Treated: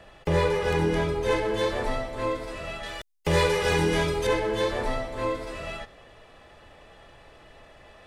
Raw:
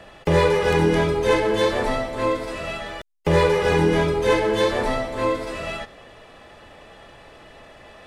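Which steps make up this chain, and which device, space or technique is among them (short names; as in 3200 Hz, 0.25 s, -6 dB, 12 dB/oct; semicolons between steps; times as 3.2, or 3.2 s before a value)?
low shelf boost with a cut just above (low shelf 89 Hz +6 dB; bell 230 Hz -2.5 dB 0.82 oct); 2.83–4.27 high shelf 2300 Hz +10 dB; gain -6 dB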